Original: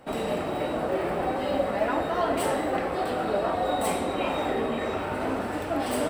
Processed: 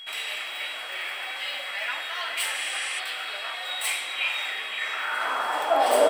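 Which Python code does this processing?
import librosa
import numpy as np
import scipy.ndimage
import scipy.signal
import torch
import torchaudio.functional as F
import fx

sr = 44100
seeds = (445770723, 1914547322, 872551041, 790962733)

y = fx.filter_sweep_highpass(x, sr, from_hz=2300.0, to_hz=530.0, start_s=4.75, end_s=6.09, q=2.0)
y = y + 10.0 ** (-44.0 / 20.0) * np.sin(2.0 * np.pi * 3300.0 * np.arange(len(y)) / sr)
y = fx.spec_repair(y, sr, seeds[0], start_s=2.56, length_s=0.41, low_hz=1800.0, high_hz=11000.0, source='before')
y = y * 10.0 ** (5.0 / 20.0)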